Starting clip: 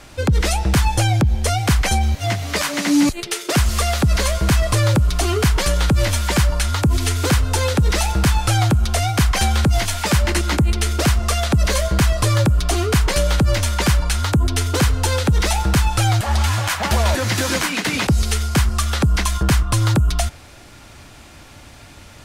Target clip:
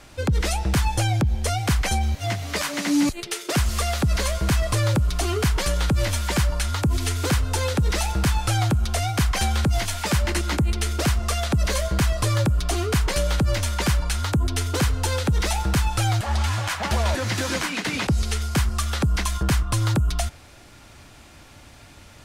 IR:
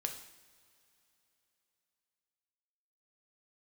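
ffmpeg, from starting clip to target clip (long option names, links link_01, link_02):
-filter_complex "[0:a]asettb=1/sr,asplit=3[link_01][link_02][link_03];[link_01]atrim=end=16.204[link_04];[link_02]atrim=start=16.2:end=18.42,asetpts=PTS-STARTPTS,afade=type=in:duration=0.004:curve=qsin,afade=type=out:start_time=2.216:duration=0.004:curve=qsin,highshelf=frequency=12000:gain=-9[link_05];[link_03]atrim=start=18.416[link_06];[link_04][link_05]acrossfade=duration=0.004:curve1=hsin:curve2=qsin[link_07];[link_07][link_06]acrossfade=duration=0.004:curve1=qsin:curve2=hsin,volume=-5dB"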